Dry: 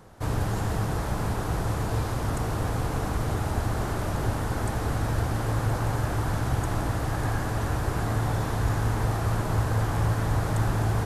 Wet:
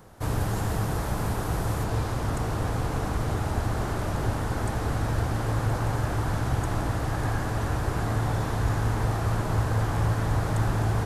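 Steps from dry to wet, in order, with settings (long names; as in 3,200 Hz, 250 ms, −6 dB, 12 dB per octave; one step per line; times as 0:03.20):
high-shelf EQ 12,000 Hz +7.5 dB, from 0:01.84 −5.5 dB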